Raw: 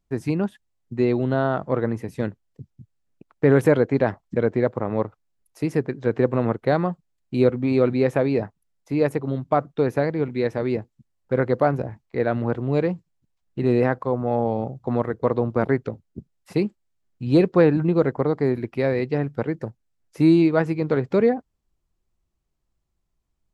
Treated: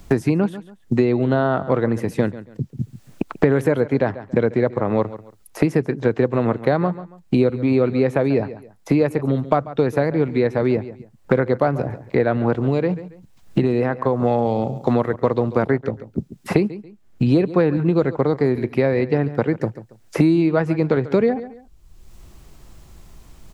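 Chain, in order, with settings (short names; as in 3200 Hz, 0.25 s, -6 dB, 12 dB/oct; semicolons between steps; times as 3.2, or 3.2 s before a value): 12.68–14.22 compressor, threshold -22 dBFS, peak gain reduction 8 dB; on a send: feedback echo 0.139 s, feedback 17%, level -18 dB; on the sum: three-band squash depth 100%; gain +2.5 dB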